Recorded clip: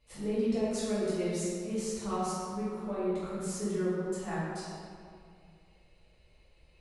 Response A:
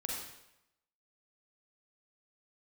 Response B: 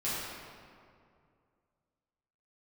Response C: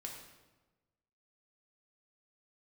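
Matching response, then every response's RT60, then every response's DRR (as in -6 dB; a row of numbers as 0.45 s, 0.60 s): B; 0.85 s, 2.3 s, 1.2 s; -2.5 dB, -11.0 dB, -0.5 dB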